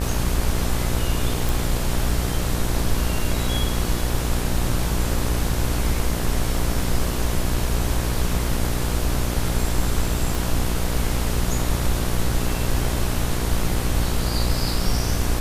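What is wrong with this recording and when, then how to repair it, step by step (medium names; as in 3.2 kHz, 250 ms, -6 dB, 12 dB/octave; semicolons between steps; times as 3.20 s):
buzz 60 Hz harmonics 29 -25 dBFS
1.49 s: pop
10.35 s: pop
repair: de-click; de-hum 60 Hz, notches 29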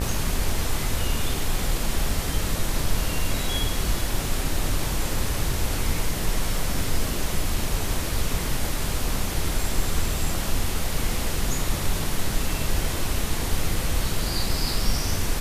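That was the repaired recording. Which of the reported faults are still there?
nothing left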